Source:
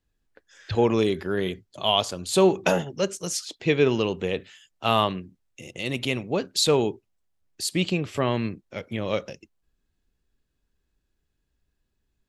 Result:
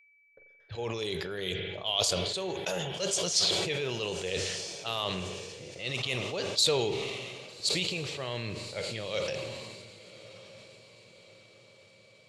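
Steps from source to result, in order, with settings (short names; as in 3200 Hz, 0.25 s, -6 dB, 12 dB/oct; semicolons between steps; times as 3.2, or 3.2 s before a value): gate with hold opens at -42 dBFS; low-pass opened by the level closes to 660 Hz, open at -21.5 dBFS; reverse; compressor 6:1, threshold -31 dBFS, peak gain reduction 16.5 dB; reverse; graphic EQ 125/250/500/2000/4000/8000 Hz +4/-9/+6/+3/+9/+5 dB; whine 2300 Hz -57 dBFS; high shelf 3800 Hz +7.5 dB; on a send: diffused feedback echo 1.225 s, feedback 50%, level -15 dB; on the sum: spring tank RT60 1.2 s, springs 43 ms, chirp 40 ms, DRR 12 dB; sustainer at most 28 dB/s; gain -4 dB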